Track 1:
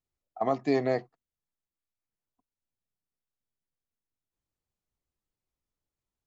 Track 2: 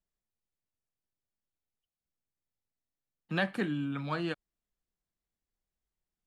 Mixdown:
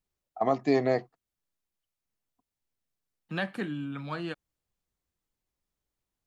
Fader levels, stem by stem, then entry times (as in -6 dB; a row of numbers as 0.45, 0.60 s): +1.5, -1.5 dB; 0.00, 0.00 s